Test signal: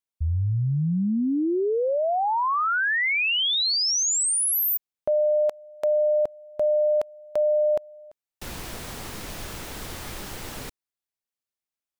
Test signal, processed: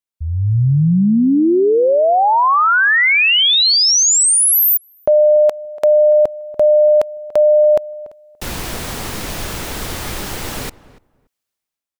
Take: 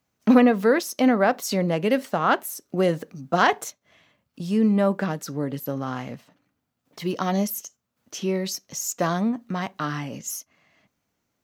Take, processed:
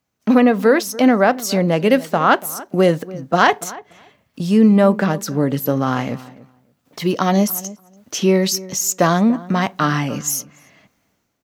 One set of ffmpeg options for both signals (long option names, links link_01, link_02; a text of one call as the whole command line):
ffmpeg -i in.wav -filter_complex "[0:a]dynaudnorm=framelen=120:gausssize=7:maxgain=11dB,asplit=2[link_01][link_02];[link_02]adelay=288,lowpass=frequency=1400:poles=1,volume=-18dB,asplit=2[link_03][link_04];[link_04]adelay=288,lowpass=frequency=1400:poles=1,volume=0.17[link_05];[link_03][link_05]amix=inputs=2:normalize=0[link_06];[link_01][link_06]amix=inputs=2:normalize=0" out.wav